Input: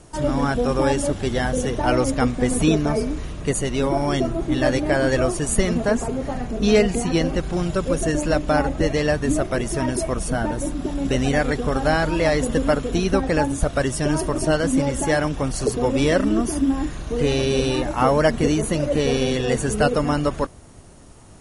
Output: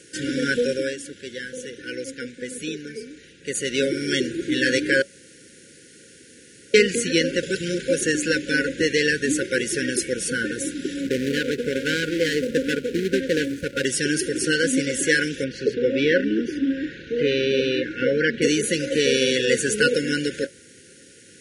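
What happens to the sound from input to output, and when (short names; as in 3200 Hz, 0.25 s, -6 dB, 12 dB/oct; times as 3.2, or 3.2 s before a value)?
0.58–3.78 dip -12 dB, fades 0.37 s
5.02–6.74 room tone
7.43–7.88 reverse
11.01–13.85 median filter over 25 samples
15.44–18.42 air absorption 260 m
whole clip: weighting filter A; FFT band-reject 550–1400 Hz; gain +5.5 dB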